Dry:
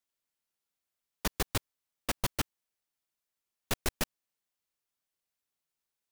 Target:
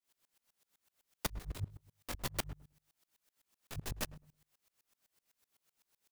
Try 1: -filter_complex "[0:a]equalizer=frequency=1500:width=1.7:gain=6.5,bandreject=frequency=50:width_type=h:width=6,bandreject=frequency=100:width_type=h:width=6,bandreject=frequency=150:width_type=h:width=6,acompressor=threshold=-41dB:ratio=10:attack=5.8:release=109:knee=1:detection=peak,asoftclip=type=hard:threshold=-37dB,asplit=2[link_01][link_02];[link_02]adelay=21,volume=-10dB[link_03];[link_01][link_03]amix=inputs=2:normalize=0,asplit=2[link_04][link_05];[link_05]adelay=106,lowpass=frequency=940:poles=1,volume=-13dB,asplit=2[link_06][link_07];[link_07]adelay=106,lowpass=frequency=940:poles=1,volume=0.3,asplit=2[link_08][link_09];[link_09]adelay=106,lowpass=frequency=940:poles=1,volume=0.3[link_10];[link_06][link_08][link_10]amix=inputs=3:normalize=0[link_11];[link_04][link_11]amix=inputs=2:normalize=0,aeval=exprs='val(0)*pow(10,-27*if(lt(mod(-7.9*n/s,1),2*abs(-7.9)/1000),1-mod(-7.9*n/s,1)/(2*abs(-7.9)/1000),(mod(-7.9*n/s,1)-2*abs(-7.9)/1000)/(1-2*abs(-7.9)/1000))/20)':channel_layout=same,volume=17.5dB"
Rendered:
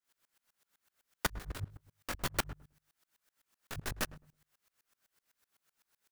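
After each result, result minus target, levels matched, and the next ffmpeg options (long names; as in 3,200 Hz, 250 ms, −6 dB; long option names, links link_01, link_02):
2,000 Hz band +4.0 dB; hard clipping: distortion −4 dB
-filter_complex "[0:a]bandreject=frequency=50:width_type=h:width=6,bandreject=frequency=100:width_type=h:width=6,bandreject=frequency=150:width_type=h:width=6,acompressor=threshold=-41dB:ratio=10:attack=5.8:release=109:knee=1:detection=peak,asoftclip=type=hard:threshold=-37dB,asplit=2[link_01][link_02];[link_02]adelay=21,volume=-10dB[link_03];[link_01][link_03]amix=inputs=2:normalize=0,asplit=2[link_04][link_05];[link_05]adelay=106,lowpass=frequency=940:poles=1,volume=-13dB,asplit=2[link_06][link_07];[link_07]adelay=106,lowpass=frequency=940:poles=1,volume=0.3,asplit=2[link_08][link_09];[link_09]adelay=106,lowpass=frequency=940:poles=1,volume=0.3[link_10];[link_06][link_08][link_10]amix=inputs=3:normalize=0[link_11];[link_04][link_11]amix=inputs=2:normalize=0,aeval=exprs='val(0)*pow(10,-27*if(lt(mod(-7.9*n/s,1),2*abs(-7.9)/1000),1-mod(-7.9*n/s,1)/(2*abs(-7.9)/1000),(mod(-7.9*n/s,1)-2*abs(-7.9)/1000)/(1-2*abs(-7.9)/1000))/20)':channel_layout=same,volume=17.5dB"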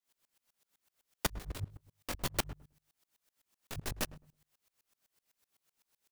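hard clipping: distortion −5 dB
-filter_complex "[0:a]bandreject=frequency=50:width_type=h:width=6,bandreject=frequency=100:width_type=h:width=6,bandreject=frequency=150:width_type=h:width=6,acompressor=threshold=-41dB:ratio=10:attack=5.8:release=109:knee=1:detection=peak,asoftclip=type=hard:threshold=-44dB,asplit=2[link_01][link_02];[link_02]adelay=21,volume=-10dB[link_03];[link_01][link_03]amix=inputs=2:normalize=0,asplit=2[link_04][link_05];[link_05]adelay=106,lowpass=frequency=940:poles=1,volume=-13dB,asplit=2[link_06][link_07];[link_07]adelay=106,lowpass=frequency=940:poles=1,volume=0.3,asplit=2[link_08][link_09];[link_09]adelay=106,lowpass=frequency=940:poles=1,volume=0.3[link_10];[link_06][link_08][link_10]amix=inputs=3:normalize=0[link_11];[link_04][link_11]amix=inputs=2:normalize=0,aeval=exprs='val(0)*pow(10,-27*if(lt(mod(-7.9*n/s,1),2*abs(-7.9)/1000),1-mod(-7.9*n/s,1)/(2*abs(-7.9)/1000),(mod(-7.9*n/s,1)-2*abs(-7.9)/1000)/(1-2*abs(-7.9)/1000))/20)':channel_layout=same,volume=17.5dB"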